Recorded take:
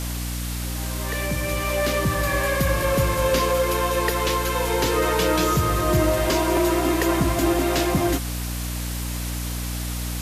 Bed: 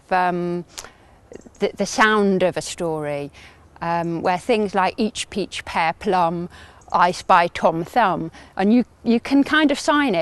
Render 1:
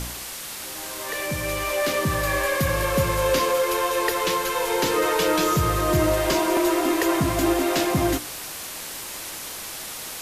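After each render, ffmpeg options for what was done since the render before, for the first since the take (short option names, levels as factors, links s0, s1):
-af "bandreject=f=60:t=h:w=4,bandreject=f=120:t=h:w=4,bandreject=f=180:t=h:w=4,bandreject=f=240:t=h:w=4,bandreject=f=300:t=h:w=4,bandreject=f=360:t=h:w=4,bandreject=f=420:t=h:w=4,bandreject=f=480:t=h:w=4,bandreject=f=540:t=h:w=4,bandreject=f=600:t=h:w=4,bandreject=f=660:t=h:w=4"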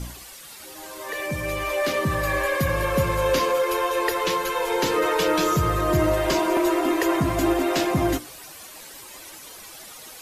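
-af "afftdn=nr=11:nf=-35"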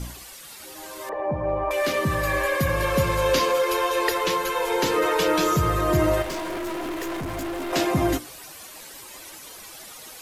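-filter_complex "[0:a]asettb=1/sr,asplit=3[s0][s1][s2];[s0]atrim=end=1.094[s3];[s1]atrim=start=1.09:end=1.71,asetpts=PTS-STARTPTS,afade=t=in:d=0.004:c=qsin,afade=t=out:st=0.616:d=0.004:c=qsin,lowpass=f=840:t=q:w=4[s4];[s2]atrim=start=1.706[s5];[s3][s4]acrossfade=d=0.004:c1=hsin:c2=qsin[s6];[s6][s5]acrossfade=d=0.004:c1=qsin:c2=hsin,asettb=1/sr,asplit=3[s7][s8][s9];[s7]atrim=end=2.804[s10];[s8]atrim=start=2.8:end=4.18,asetpts=PTS-STARTPTS,afade=t=in:d=0.004:c=qsin,afade=t=out:st=1.376:d=0.004:c=qsin,equalizer=f=4400:t=o:w=1.5:g=3.5[s11];[s9]atrim=start=4.176[s12];[s10][s11]acrossfade=d=0.004:c1=hsin:c2=qsin[s13];[s13][s12]acrossfade=d=0.004:c1=qsin:c2=hsin,asettb=1/sr,asplit=3[s14][s15][s16];[s14]atrim=end=6.224[s17];[s15]atrim=start=6.22:end=7.73,asetpts=PTS-STARTPTS,afade=t=in:d=0.004:c=qsin,afade=t=out:st=1.506:d=0.004:c=qsin,aeval=exprs='(tanh(25.1*val(0)+0.3)-tanh(0.3))/25.1':c=same[s18];[s16]atrim=start=7.726[s19];[s17][s18]acrossfade=d=0.004:c1=hsin:c2=qsin[s20];[s20][s19]acrossfade=d=0.004:c1=qsin:c2=hsin"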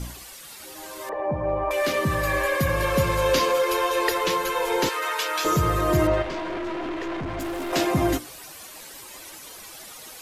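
-filter_complex "[0:a]asettb=1/sr,asplit=3[s0][s1][s2];[s0]atrim=end=4.894[s3];[s1]atrim=start=4.89:end=5.45,asetpts=PTS-STARTPTS,afade=t=in:d=0.004:c=qsin,afade=t=out:st=0.556:d=0.004:c=qsin,highpass=1000[s4];[s2]atrim=start=5.446[s5];[s3][s4]acrossfade=d=0.004:c1=hsin:c2=qsin[s6];[s6][s5]acrossfade=d=0.004:c1=qsin:c2=hsin,asettb=1/sr,asplit=3[s7][s8][s9];[s7]atrim=end=6.074[s10];[s8]atrim=start=6.07:end=7.4,asetpts=PTS-STARTPTS,afade=t=in:d=0.004:c=qsin,afade=t=out:st=1.326:d=0.004:c=qsin,lowpass=3800[s11];[s9]atrim=start=7.396[s12];[s10][s11]acrossfade=d=0.004:c1=hsin:c2=qsin[s13];[s13][s12]acrossfade=d=0.004:c1=qsin:c2=hsin"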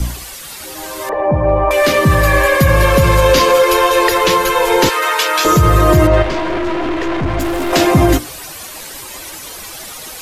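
-filter_complex "[0:a]acrossover=split=120|4100[s0][s1][s2];[s0]acontrast=35[s3];[s3][s1][s2]amix=inputs=3:normalize=0,alimiter=level_in=3.76:limit=0.891:release=50:level=0:latency=1"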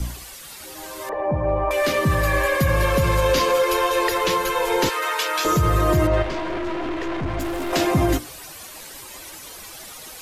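-af "volume=0.376"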